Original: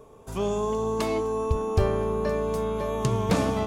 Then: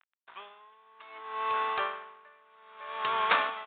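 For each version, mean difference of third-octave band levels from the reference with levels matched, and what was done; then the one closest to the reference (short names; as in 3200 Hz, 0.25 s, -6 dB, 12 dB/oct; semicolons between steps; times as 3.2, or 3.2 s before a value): 16.5 dB: crossover distortion -40.5 dBFS; resonant high-pass 1300 Hz, resonance Q 1.6; downsampling 8000 Hz; dB-linear tremolo 0.62 Hz, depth 31 dB; gain +8 dB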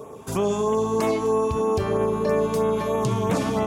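2.5 dB: HPF 120 Hz 12 dB/oct; vocal rider within 4 dB 0.5 s; limiter -21.5 dBFS, peak gain reduction 8.5 dB; LFO notch sine 3.1 Hz 470–4800 Hz; gain +8 dB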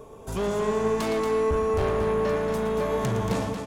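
3.5 dB: ending faded out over 0.61 s; notch 1200 Hz, Q 30; soft clip -28 dBFS, distortion -8 dB; on a send: loudspeakers at several distances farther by 39 m -10 dB, 79 m -7 dB; on the sum: gain +5 dB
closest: second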